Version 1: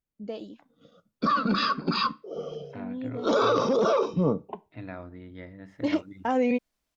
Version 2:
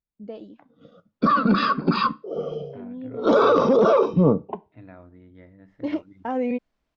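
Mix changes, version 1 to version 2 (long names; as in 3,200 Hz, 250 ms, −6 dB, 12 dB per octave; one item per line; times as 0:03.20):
second voice −4.5 dB
background +7.5 dB
master: add head-to-tape spacing loss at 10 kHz 22 dB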